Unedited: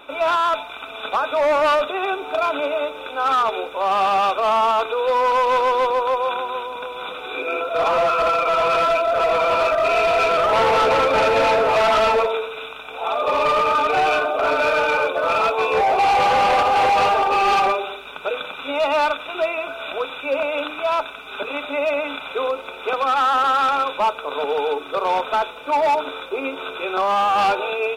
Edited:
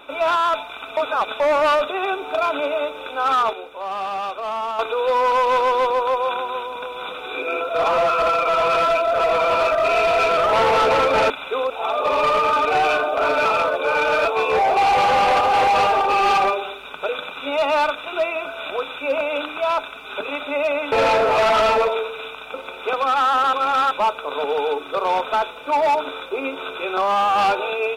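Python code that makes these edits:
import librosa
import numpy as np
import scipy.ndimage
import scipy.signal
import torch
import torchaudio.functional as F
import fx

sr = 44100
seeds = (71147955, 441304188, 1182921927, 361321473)

y = fx.edit(x, sr, fx.reverse_span(start_s=0.97, length_s=0.43),
    fx.clip_gain(start_s=3.53, length_s=1.26, db=-8.0),
    fx.swap(start_s=11.3, length_s=1.62, other_s=22.14, other_length_s=0.4),
    fx.reverse_span(start_s=14.67, length_s=0.8),
    fx.reverse_span(start_s=23.53, length_s=0.38), tone=tone)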